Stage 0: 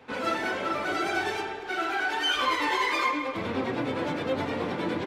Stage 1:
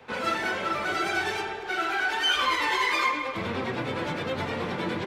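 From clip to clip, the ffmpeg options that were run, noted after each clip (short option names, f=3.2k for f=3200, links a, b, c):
-filter_complex "[0:a]equalizer=f=280:w=6.3:g=-11,acrossover=split=370|900|2100[a][b][c][d];[b]alimiter=level_in=10dB:limit=-24dB:level=0:latency=1:release=322,volume=-10dB[e];[a][e][c][d]amix=inputs=4:normalize=0,volume=2.5dB"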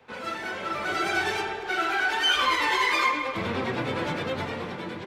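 -af "dynaudnorm=f=230:g=7:m=8dB,volume=-6dB"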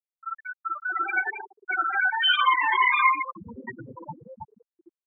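-af "afftfilt=real='re*gte(hypot(re,im),0.178)':imag='im*gte(hypot(re,im),0.178)':win_size=1024:overlap=0.75,equalizer=f=500:t=o:w=1:g=-10,equalizer=f=1k:t=o:w=1:g=10,equalizer=f=2k:t=o:w=1:g=7,equalizer=f=4k:t=o:w=1:g=5,volume=-4.5dB"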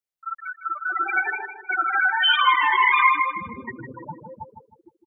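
-af "aecho=1:1:156|312|468|624:0.376|0.124|0.0409|0.0135,volume=2.5dB"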